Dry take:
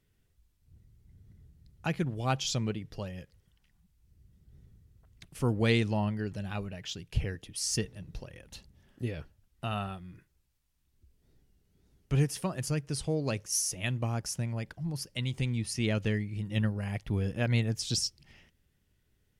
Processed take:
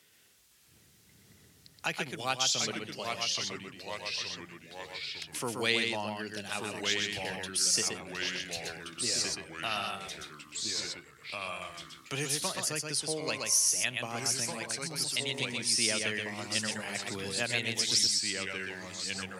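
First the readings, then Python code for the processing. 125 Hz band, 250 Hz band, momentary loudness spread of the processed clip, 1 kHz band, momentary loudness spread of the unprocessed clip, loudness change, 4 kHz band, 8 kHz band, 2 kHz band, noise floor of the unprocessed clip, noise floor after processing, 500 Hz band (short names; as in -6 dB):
-13.5 dB, -6.5 dB, 13 LU, +2.5 dB, 12 LU, +1.0 dB, +8.5 dB, +7.5 dB, +6.5 dB, -73 dBFS, -62 dBFS, -1.0 dB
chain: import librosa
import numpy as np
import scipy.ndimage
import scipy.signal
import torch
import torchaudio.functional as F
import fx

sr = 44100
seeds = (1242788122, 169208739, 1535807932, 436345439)

p1 = fx.high_shelf(x, sr, hz=3500.0, db=9.5)
p2 = fx.echo_pitch(p1, sr, ms=515, semitones=-2, count=3, db_per_echo=-6.0)
p3 = fx.weighting(p2, sr, curve='A')
p4 = p3 + fx.echo_single(p3, sr, ms=125, db=-4.5, dry=0)
y = fx.band_squash(p4, sr, depth_pct=40)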